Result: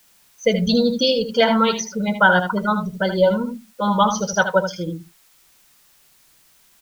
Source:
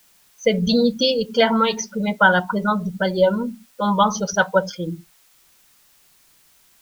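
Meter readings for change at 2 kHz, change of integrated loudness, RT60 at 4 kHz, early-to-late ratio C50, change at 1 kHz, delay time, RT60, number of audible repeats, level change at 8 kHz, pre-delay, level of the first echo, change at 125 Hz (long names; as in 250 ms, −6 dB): +0.5 dB, +0.5 dB, no reverb audible, no reverb audible, +0.5 dB, 77 ms, no reverb audible, 1, can't be measured, no reverb audible, −8.5 dB, +0.5 dB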